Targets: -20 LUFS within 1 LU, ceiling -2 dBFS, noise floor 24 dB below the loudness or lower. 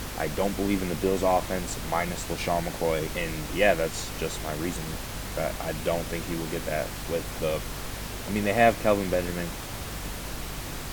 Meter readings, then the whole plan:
hum 50 Hz; highest harmonic 250 Hz; hum level -39 dBFS; noise floor -36 dBFS; noise floor target -53 dBFS; loudness -28.5 LUFS; peak level -6.5 dBFS; loudness target -20.0 LUFS
-> hum notches 50/100/150/200/250 Hz; noise print and reduce 17 dB; trim +8.5 dB; peak limiter -2 dBFS

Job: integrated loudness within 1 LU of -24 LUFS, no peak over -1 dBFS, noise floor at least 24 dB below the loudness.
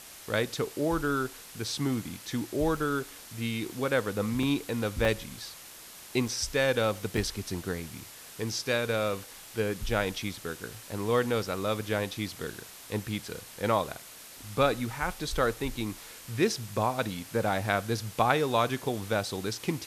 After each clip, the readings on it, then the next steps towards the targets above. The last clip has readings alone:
dropouts 5; longest dropout 2.4 ms; noise floor -48 dBFS; noise floor target -55 dBFS; loudness -30.5 LUFS; peak level -8.5 dBFS; loudness target -24.0 LUFS
-> interpolate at 2.77/4.43/5.05/6.28/7.17 s, 2.4 ms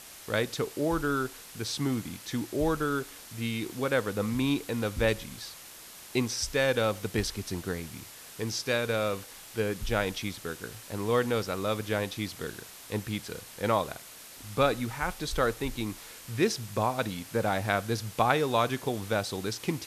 dropouts 0; noise floor -48 dBFS; noise floor target -55 dBFS
-> noise reduction 7 dB, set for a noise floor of -48 dBFS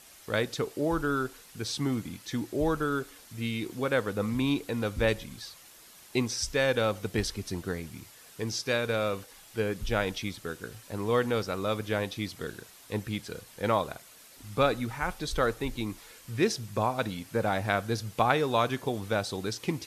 noise floor -53 dBFS; noise floor target -55 dBFS
-> noise reduction 6 dB, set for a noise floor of -53 dBFS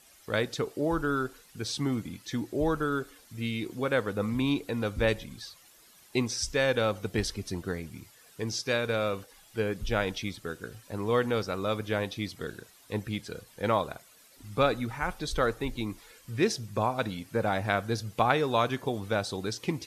noise floor -58 dBFS; loudness -30.5 LUFS; peak level -8.5 dBFS; loudness target -24.0 LUFS
-> trim +6.5 dB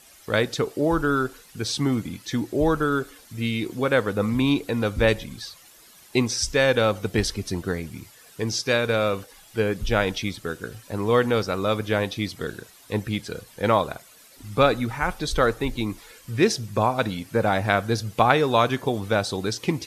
loudness -24.0 LUFS; peak level -2.0 dBFS; noise floor -51 dBFS

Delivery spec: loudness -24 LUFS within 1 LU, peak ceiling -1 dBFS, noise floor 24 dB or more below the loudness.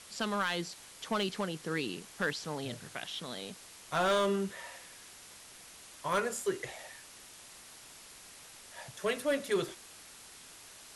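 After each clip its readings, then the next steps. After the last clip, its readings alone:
clipped samples 0.6%; clipping level -23.5 dBFS; noise floor -53 dBFS; noise floor target -59 dBFS; loudness -34.5 LUFS; peak level -23.5 dBFS; loudness target -24.0 LUFS
-> clip repair -23.5 dBFS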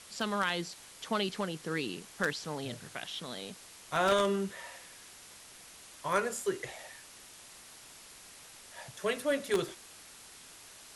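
clipped samples 0.0%; noise floor -53 dBFS; noise floor target -58 dBFS
-> noise print and reduce 6 dB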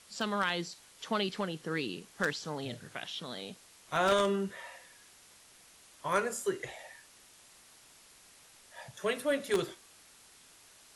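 noise floor -59 dBFS; loudness -34.0 LUFS; peak level -14.5 dBFS; loudness target -24.0 LUFS
-> trim +10 dB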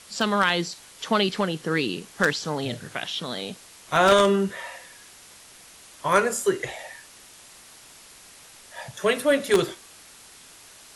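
loudness -24.0 LUFS; peak level -4.5 dBFS; noise floor -49 dBFS

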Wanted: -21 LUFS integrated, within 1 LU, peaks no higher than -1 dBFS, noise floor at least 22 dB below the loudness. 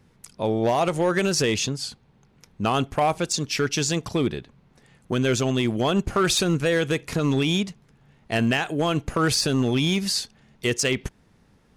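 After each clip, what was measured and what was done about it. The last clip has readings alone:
clipped samples 1.0%; clipping level -14.5 dBFS; loudness -23.5 LUFS; peak level -14.5 dBFS; loudness target -21.0 LUFS
-> clip repair -14.5 dBFS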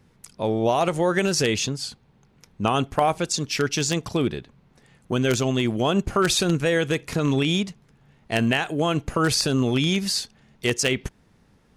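clipped samples 0.0%; loudness -23.0 LUFS; peak level -5.5 dBFS; loudness target -21.0 LUFS
-> trim +2 dB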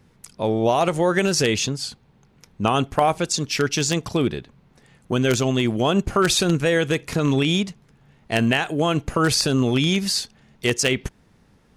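loudness -21.0 LUFS; peak level -3.5 dBFS; noise floor -58 dBFS

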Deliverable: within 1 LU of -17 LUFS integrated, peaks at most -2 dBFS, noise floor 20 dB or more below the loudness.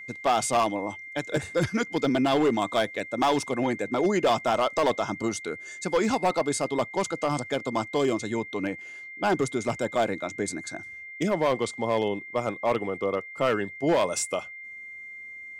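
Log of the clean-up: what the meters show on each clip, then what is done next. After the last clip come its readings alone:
clipped samples 1.1%; clipping level -17.0 dBFS; steady tone 2.1 kHz; tone level -39 dBFS; loudness -27.0 LUFS; peak level -17.0 dBFS; loudness target -17.0 LUFS
-> clip repair -17 dBFS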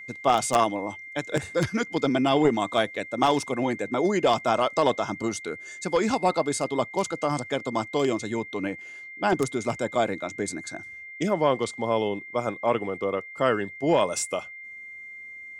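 clipped samples 0.0%; steady tone 2.1 kHz; tone level -39 dBFS
-> band-stop 2.1 kHz, Q 30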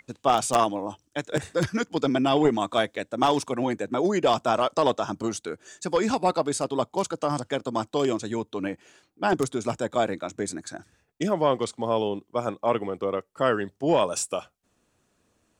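steady tone not found; loudness -26.0 LUFS; peak level -8.0 dBFS; loudness target -17.0 LUFS
-> trim +9 dB; peak limiter -2 dBFS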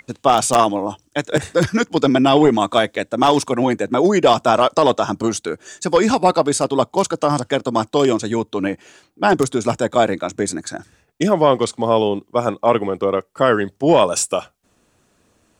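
loudness -17.5 LUFS; peak level -2.0 dBFS; noise floor -63 dBFS

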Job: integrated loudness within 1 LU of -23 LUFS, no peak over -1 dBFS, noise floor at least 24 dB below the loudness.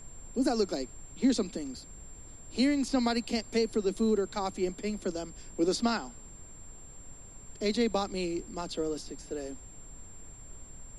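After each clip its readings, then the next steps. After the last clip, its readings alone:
steady tone 7.4 kHz; tone level -50 dBFS; noise floor -50 dBFS; noise floor target -56 dBFS; loudness -31.5 LUFS; peak level -15.5 dBFS; loudness target -23.0 LUFS
-> band-stop 7.4 kHz, Q 30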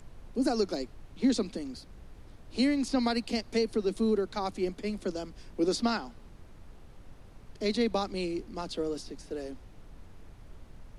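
steady tone not found; noise floor -52 dBFS; noise floor target -56 dBFS
-> noise print and reduce 6 dB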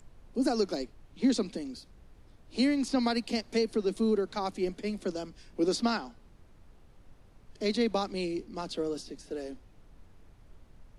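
noise floor -58 dBFS; loudness -31.5 LUFS; peak level -16.0 dBFS; loudness target -23.0 LUFS
-> trim +8.5 dB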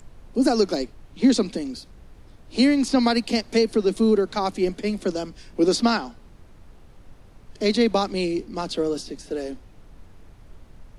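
loudness -23.0 LUFS; peak level -7.5 dBFS; noise floor -49 dBFS

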